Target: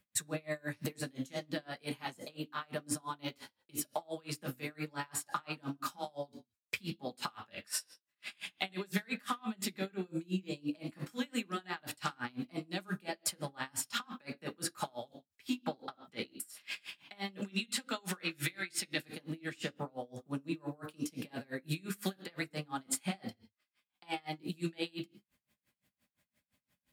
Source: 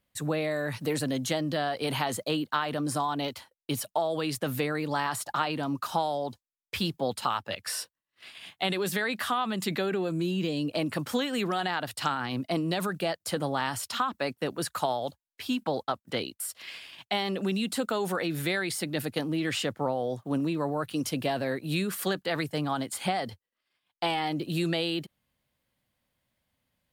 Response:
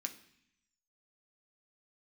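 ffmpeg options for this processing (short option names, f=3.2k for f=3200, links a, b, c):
-filter_complex "[0:a]asettb=1/sr,asplit=3[a][b][c];[a]atrim=end=17.424[d];[b]atrim=start=17.42:end=19.09,asetpts=PTS-STARTPTS,afade=t=in:d=0.004:c=qsin,afade=t=out:st=1.666:d=0.004:c=qsin,equalizer=f=2.9k:w=0.41:g=9.5[e];[c]atrim=start=19.086[f];[d][e]acrossfade=d=0.004:c1=hsin:c2=qsin[g];[g][f]acrossfade=d=0.004:c1=qsin:c2=hsin,acompressor=threshold=-34dB:ratio=6[h];[1:a]atrim=start_sample=2205,afade=t=out:st=0.23:d=0.01,atrim=end_sample=10584[i];[h][i]afir=irnorm=-1:irlink=0,aeval=exprs='val(0)*pow(10,-30*(0.5-0.5*cos(2*PI*5.8*n/s))/20)':c=same,volume=6.5dB"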